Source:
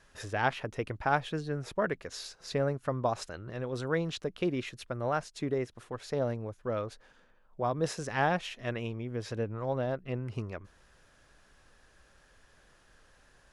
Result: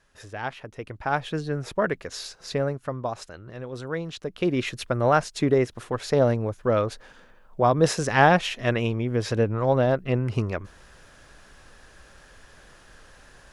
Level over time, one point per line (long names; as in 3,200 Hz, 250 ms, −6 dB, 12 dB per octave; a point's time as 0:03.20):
0:00.74 −3 dB
0:01.38 +6 dB
0:02.40 +6 dB
0:03.06 0 dB
0:04.13 0 dB
0:04.70 +11 dB